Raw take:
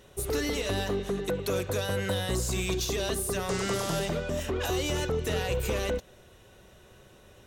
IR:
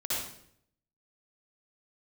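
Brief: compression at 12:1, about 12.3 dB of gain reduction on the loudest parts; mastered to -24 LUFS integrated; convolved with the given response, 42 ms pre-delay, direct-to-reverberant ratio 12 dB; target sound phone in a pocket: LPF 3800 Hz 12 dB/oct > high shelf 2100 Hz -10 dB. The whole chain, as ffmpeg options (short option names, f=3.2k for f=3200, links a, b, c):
-filter_complex "[0:a]acompressor=threshold=-38dB:ratio=12,asplit=2[a][b];[1:a]atrim=start_sample=2205,adelay=42[c];[b][c]afir=irnorm=-1:irlink=0,volume=-18dB[d];[a][d]amix=inputs=2:normalize=0,lowpass=3.8k,highshelf=f=2.1k:g=-10,volume=19dB"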